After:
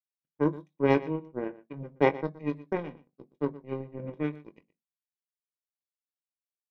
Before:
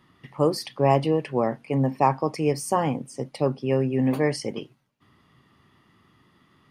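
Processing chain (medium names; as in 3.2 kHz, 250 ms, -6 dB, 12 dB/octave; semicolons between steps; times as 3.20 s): steep low-pass 5.7 kHz; power-law waveshaper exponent 3; formant shift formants -4 st; doubling 21 ms -12 dB; delay 120 ms -18 dB; reverberation RT60 0.25 s, pre-delay 3 ms, DRR 18.5 dB; trim -6 dB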